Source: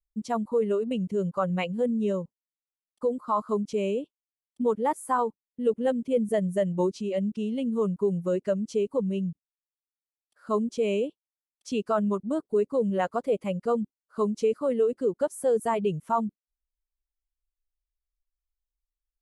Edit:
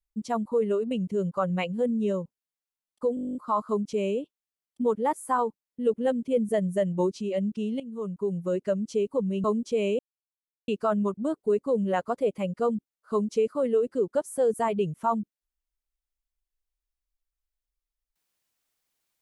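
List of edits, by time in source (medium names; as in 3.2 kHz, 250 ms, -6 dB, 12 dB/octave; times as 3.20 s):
3.15 s: stutter 0.02 s, 11 plays
7.60–8.69 s: fade in equal-power, from -15 dB
9.24–10.50 s: delete
11.05–11.74 s: mute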